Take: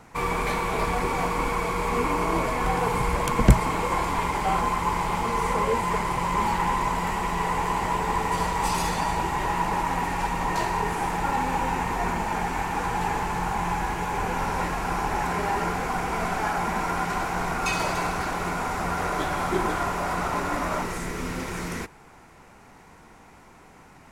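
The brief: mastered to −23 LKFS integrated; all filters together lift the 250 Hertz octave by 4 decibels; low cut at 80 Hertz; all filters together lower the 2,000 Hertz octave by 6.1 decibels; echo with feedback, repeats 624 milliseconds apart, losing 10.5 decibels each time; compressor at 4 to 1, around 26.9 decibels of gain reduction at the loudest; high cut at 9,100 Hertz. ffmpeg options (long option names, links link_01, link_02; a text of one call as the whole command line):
ffmpeg -i in.wav -af "highpass=80,lowpass=9100,equalizer=frequency=250:width_type=o:gain=6,equalizer=frequency=2000:width_type=o:gain=-8,acompressor=threshold=-43dB:ratio=4,aecho=1:1:624|1248|1872:0.299|0.0896|0.0269,volume=19.5dB" out.wav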